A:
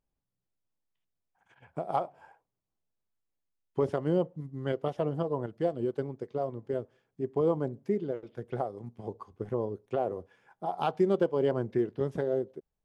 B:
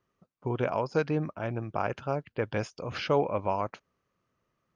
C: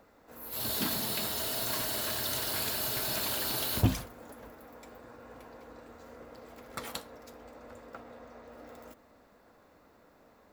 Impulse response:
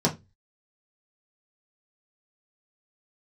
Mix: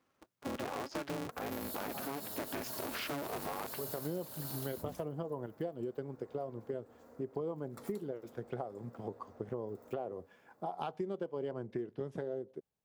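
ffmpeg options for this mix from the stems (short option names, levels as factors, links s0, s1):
-filter_complex "[0:a]volume=0.944[s0];[1:a]asoftclip=type=tanh:threshold=0.0668,aeval=exprs='val(0)*sgn(sin(2*PI*140*n/s))':c=same,volume=1.19,asplit=2[s1][s2];[2:a]equalizer=f=2700:w=0.69:g=-10.5,adelay=1000,volume=0.473[s3];[s2]apad=whole_len=566587[s4];[s0][s4]sidechaincompress=threshold=0.00398:ratio=8:attack=16:release=283[s5];[s1][s3]amix=inputs=2:normalize=0,alimiter=level_in=1.33:limit=0.0631:level=0:latency=1:release=52,volume=0.75,volume=1[s6];[s5][s6]amix=inputs=2:normalize=0,highpass=100,acompressor=threshold=0.0158:ratio=5"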